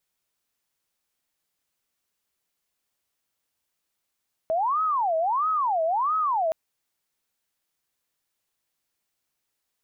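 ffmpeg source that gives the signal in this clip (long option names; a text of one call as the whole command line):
ffmpeg -f lavfi -i "aevalsrc='0.0891*sin(2*PI*(960*t-320/(2*PI*1.5)*sin(2*PI*1.5*t)))':duration=2.02:sample_rate=44100" out.wav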